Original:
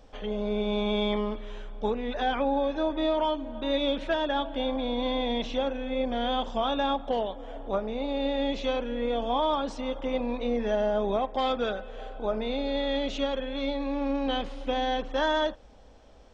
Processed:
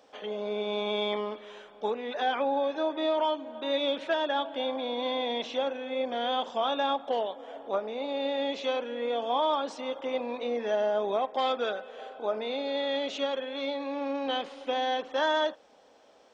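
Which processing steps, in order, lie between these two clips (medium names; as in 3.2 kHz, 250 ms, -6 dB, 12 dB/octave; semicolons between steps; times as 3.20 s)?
high-pass 360 Hz 12 dB/octave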